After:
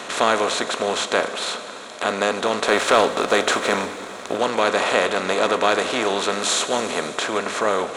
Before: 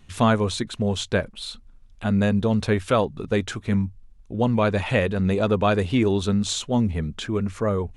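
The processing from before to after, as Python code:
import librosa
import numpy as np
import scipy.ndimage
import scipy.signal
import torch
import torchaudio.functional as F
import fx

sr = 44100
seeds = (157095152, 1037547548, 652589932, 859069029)

y = fx.bin_compress(x, sr, power=0.4)
y = scipy.signal.sosfilt(scipy.signal.butter(2, 490.0, 'highpass', fs=sr, output='sos'), y)
y = fx.leveller(y, sr, passes=1, at=(2.67, 4.38))
y = fx.high_shelf(y, sr, hz=7200.0, db=9.0, at=(6.32, 7.18))
y = fx.rev_plate(y, sr, seeds[0], rt60_s=3.3, hf_ratio=0.9, predelay_ms=0, drr_db=10.0)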